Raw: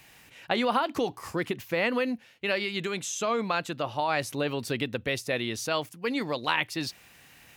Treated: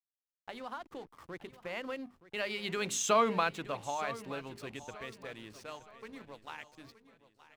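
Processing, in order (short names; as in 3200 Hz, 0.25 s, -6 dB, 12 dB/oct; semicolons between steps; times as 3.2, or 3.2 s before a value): Doppler pass-by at 3.09, 14 m/s, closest 3.1 m; bell 1200 Hz +3.5 dB 1.6 oct; notches 50/100/150/200/250/300/350/400/450 Hz; in parallel at -2.5 dB: compressor, threshold -49 dBFS, peak gain reduction 24 dB; on the sum: backlash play -47.5 dBFS; on a send: feedback echo 0.922 s, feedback 40%, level -16 dB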